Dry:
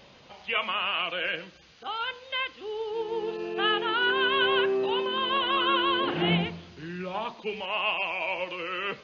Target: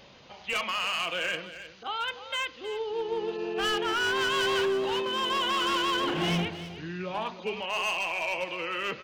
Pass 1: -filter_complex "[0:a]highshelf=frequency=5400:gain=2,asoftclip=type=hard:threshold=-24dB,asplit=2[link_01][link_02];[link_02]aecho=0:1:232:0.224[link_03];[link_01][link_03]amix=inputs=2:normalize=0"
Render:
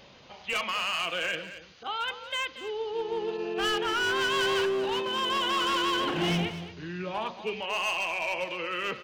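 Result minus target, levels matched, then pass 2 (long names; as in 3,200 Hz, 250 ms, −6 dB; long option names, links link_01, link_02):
echo 82 ms early
-filter_complex "[0:a]highshelf=frequency=5400:gain=2,asoftclip=type=hard:threshold=-24dB,asplit=2[link_01][link_02];[link_02]aecho=0:1:314:0.224[link_03];[link_01][link_03]amix=inputs=2:normalize=0"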